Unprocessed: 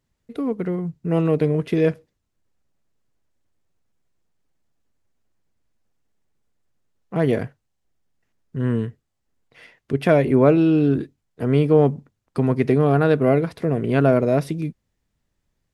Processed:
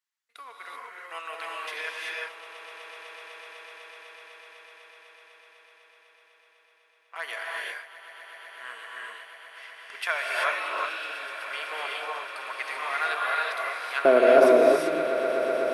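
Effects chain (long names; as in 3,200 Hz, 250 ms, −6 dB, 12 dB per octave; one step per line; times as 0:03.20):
high-pass filter 1,100 Hz 24 dB per octave, from 0:14.05 350 Hz
noise gate −55 dBFS, range −8 dB
echo that builds up and dies away 125 ms, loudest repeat 8, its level −17 dB
reverb whose tail is shaped and stops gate 410 ms rising, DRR −3 dB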